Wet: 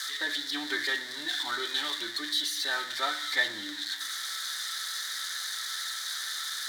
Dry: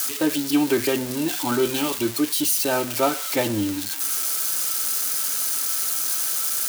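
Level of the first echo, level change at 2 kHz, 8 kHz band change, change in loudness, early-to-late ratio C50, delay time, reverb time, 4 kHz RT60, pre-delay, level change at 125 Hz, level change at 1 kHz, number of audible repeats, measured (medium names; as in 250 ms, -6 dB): no echo, +1.5 dB, -13.0 dB, -9.0 dB, 15.0 dB, no echo, 0.70 s, 0.95 s, 3 ms, under -25 dB, -8.0 dB, no echo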